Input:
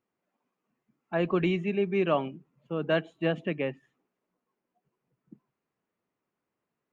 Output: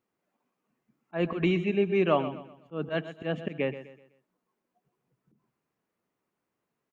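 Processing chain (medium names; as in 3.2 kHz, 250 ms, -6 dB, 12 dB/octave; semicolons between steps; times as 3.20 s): slow attack 116 ms; feedback delay 126 ms, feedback 37%, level -13 dB; trim +1.5 dB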